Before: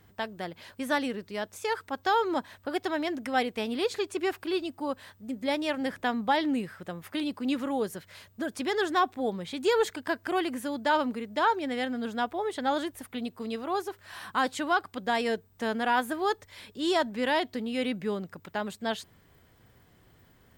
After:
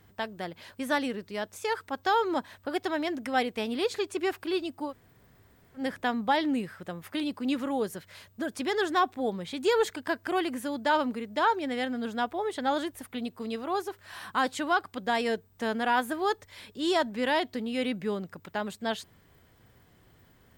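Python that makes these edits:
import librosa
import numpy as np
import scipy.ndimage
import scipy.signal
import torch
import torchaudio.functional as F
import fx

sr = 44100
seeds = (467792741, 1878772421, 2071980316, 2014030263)

y = fx.edit(x, sr, fx.room_tone_fill(start_s=4.89, length_s=0.9, crossfade_s=0.1), tone=tone)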